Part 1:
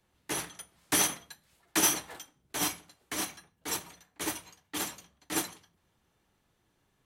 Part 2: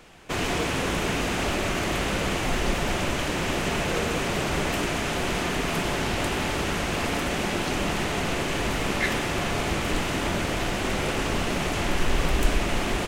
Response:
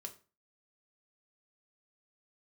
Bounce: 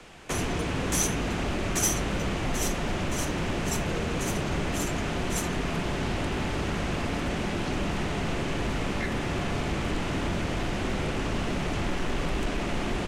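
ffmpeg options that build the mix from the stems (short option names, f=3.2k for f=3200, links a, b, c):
-filter_complex "[0:a]equalizer=f=6.9k:w=1.7:g=12,volume=-7.5dB[a];[1:a]lowpass=11k,acrossover=split=130|300|1700|6600[b][c][d][e][f];[b]acompressor=threshold=-30dB:ratio=4[g];[c]acompressor=threshold=-34dB:ratio=4[h];[d]acompressor=threshold=-36dB:ratio=4[i];[e]acompressor=threshold=-42dB:ratio=4[j];[f]acompressor=threshold=-58dB:ratio=4[k];[g][h][i][j][k]amix=inputs=5:normalize=0,asoftclip=type=hard:threshold=-24dB,volume=2dB[l];[a][l]amix=inputs=2:normalize=0"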